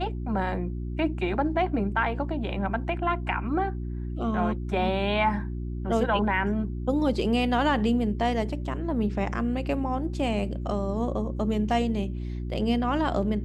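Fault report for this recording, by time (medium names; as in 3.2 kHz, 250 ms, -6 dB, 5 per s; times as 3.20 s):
hum 60 Hz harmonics 6 -32 dBFS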